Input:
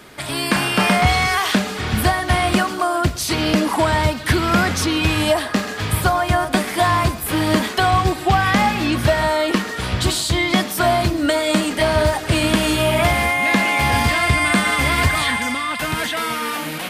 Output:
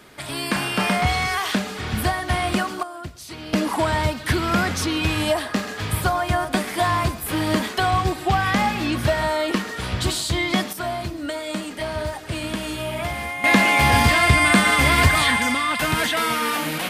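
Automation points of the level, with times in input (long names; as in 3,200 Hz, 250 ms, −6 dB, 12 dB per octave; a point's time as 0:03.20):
−5 dB
from 0:02.83 −16 dB
from 0:03.53 −4 dB
from 0:10.73 −10.5 dB
from 0:13.44 +1 dB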